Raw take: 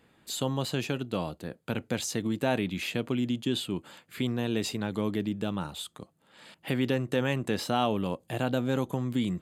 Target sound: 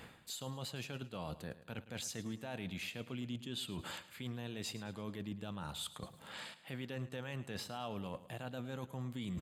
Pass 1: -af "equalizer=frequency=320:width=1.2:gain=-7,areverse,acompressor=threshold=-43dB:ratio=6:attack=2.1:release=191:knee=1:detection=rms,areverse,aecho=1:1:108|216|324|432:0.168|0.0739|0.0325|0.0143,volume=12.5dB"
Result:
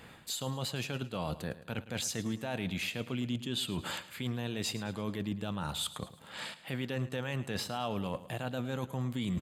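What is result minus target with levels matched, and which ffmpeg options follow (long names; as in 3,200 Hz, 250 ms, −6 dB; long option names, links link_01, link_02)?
downward compressor: peak gain reduction −7.5 dB
-af "equalizer=frequency=320:width=1.2:gain=-7,areverse,acompressor=threshold=-52dB:ratio=6:attack=2.1:release=191:knee=1:detection=rms,areverse,aecho=1:1:108|216|324|432:0.168|0.0739|0.0325|0.0143,volume=12.5dB"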